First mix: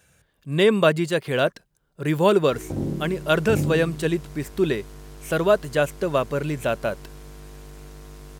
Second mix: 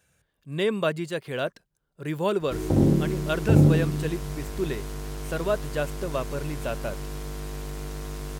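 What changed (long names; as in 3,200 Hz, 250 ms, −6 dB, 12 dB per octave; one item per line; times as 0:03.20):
speech −7.5 dB
background +7.5 dB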